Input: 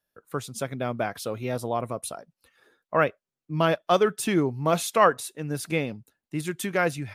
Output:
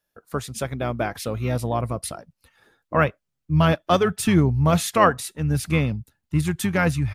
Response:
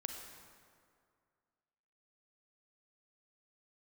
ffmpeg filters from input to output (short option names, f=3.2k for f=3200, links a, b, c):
-filter_complex "[0:a]asubboost=boost=5:cutoff=170,asplit=2[a][b];[b]asetrate=22050,aresample=44100,atempo=2,volume=-11dB[c];[a][c]amix=inputs=2:normalize=0,volume=3dB"